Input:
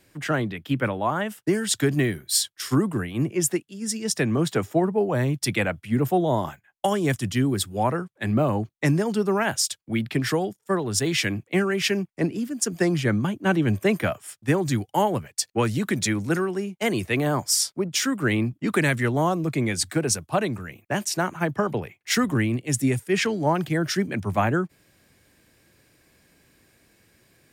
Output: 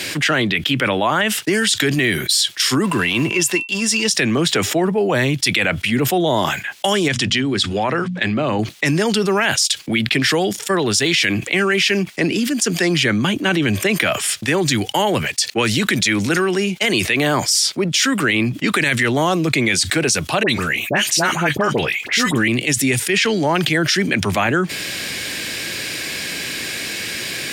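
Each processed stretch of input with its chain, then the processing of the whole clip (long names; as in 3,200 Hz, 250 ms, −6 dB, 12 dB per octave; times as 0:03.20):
0:02.84–0:04.08: mu-law and A-law mismatch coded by A + hollow resonant body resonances 1,000/2,700 Hz, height 17 dB, ringing for 95 ms
0:07.08–0:08.59: low-pass filter 5,600 Hz + mains-hum notches 60/120/180/240 Hz + downward compressor 3 to 1, threshold −28 dBFS
0:20.43–0:22.48: double-tracking delay 13 ms −13 dB + all-pass dispersion highs, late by 59 ms, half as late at 1,400 Hz
whole clip: meter weighting curve D; boost into a limiter +12 dB; envelope flattener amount 70%; level −8.5 dB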